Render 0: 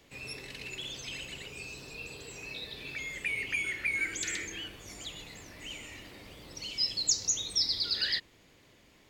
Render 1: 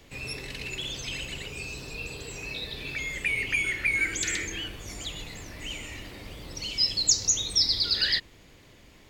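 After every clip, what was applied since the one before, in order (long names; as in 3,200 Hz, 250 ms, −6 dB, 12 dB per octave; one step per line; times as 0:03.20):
low-shelf EQ 84 Hz +10 dB
level +5.5 dB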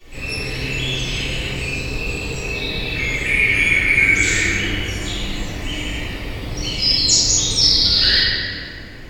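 convolution reverb RT60 2.6 s, pre-delay 3 ms, DRR −20 dB
level −7.5 dB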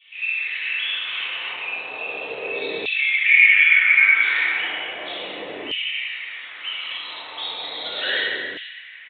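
downsampling to 8,000 Hz
auto-filter high-pass saw down 0.35 Hz 390–2,900 Hz
level −3 dB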